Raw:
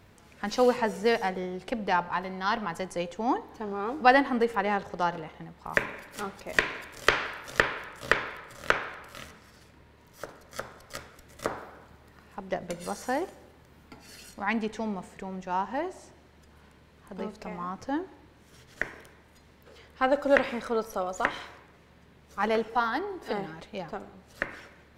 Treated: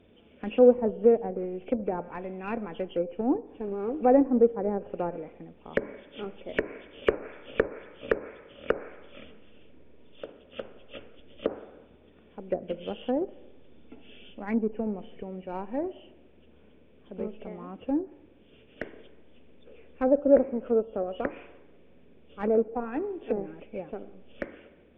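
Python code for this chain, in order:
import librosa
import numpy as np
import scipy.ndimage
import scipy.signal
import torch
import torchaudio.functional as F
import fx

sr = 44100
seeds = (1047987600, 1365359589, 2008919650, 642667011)

p1 = fx.freq_compress(x, sr, knee_hz=2200.0, ratio=4.0)
p2 = fx.graphic_eq(p1, sr, hz=(125, 250, 500, 1000, 2000), db=(-7, 7, 8, -9, -6))
p3 = fx.backlash(p2, sr, play_db=-19.0)
p4 = p2 + (p3 * librosa.db_to_amplitude(-7.0))
p5 = fx.env_lowpass_down(p4, sr, base_hz=880.0, full_db=-20.0)
y = p5 * librosa.db_to_amplitude(-4.0)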